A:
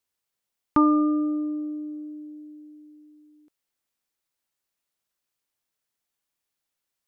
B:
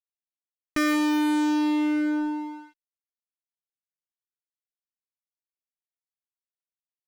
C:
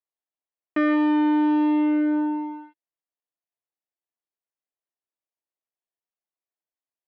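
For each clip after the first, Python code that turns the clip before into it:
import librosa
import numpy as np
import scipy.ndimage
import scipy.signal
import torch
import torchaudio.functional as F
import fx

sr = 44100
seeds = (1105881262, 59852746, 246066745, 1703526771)

y1 = fx.env_lowpass(x, sr, base_hz=570.0, full_db=-24.5)
y1 = fx.fuzz(y1, sr, gain_db=40.0, gate_db=-44.0)
y1 = F.gain(torch.from_numpy(y1), -8.5).numpy()
y2 = fx.cabinet(y1, sr, low_hz=320.0, low_slope=12, high_hz=2500.0, hz=(320.0, 670.0, 1400.0, 2300.0), db=(4, 4, -8, -7))
y2 = F.gain(torch.from_numpy(y2), 3.5).numpy()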